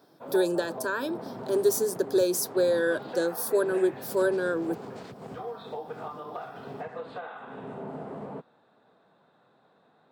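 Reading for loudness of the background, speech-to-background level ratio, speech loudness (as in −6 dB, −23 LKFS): −40.0 LKFS, 13.0 dB, −27.0 LKFS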